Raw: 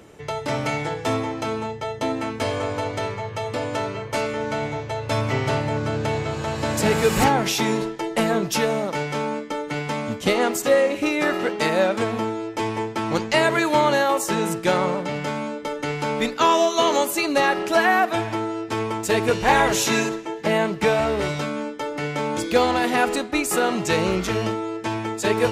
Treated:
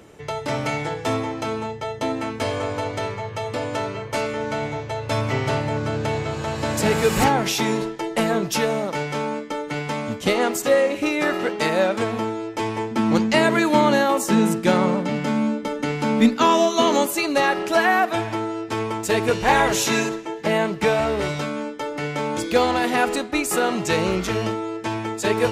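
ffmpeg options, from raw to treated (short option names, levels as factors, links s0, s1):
-filter_complex "[0:a]asettb=1/sr,asplit=3[s0][s1][s2];[s0]atrim=end=12.914[s3];[s1]atrim=start=12.91:end=17.06,asetpts=PTS-STARTPTS,afade=t=in:d=0.004:c=qsin,afade=t=out:st=4.146:d=0.004:c=qsin,equalizer=f=230:w=2.9:g=13.5[s4];[s2]atrim=start=17.056[s5];[s3][s4]acrossfade=d=0.004:c1=hsin:c2=qsin[s6];[s6][s5]acrossfade=d=0.004:c1=qsin:c2=hsin"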